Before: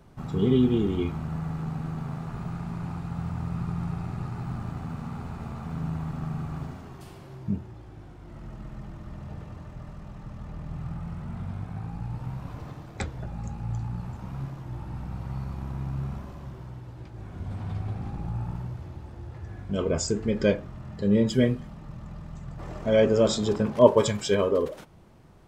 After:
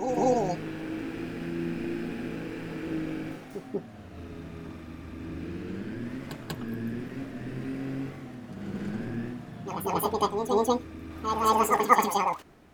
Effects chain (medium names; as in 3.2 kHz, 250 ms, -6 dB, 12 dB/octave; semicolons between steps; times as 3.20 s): speed mistake 7.5 ips tape played at 15 ips; reverse echo 190 ms -6 dB; trim -2.5 dB